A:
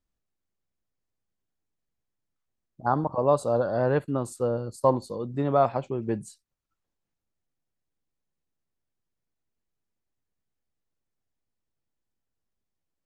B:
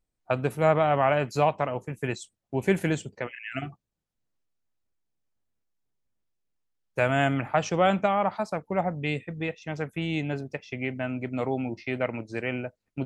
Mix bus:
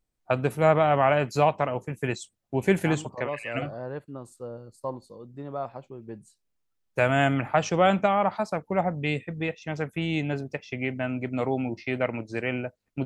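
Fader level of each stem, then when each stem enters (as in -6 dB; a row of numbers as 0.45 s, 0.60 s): -11.5 dB, +1.5 dB; 0.00 s, 0.00 s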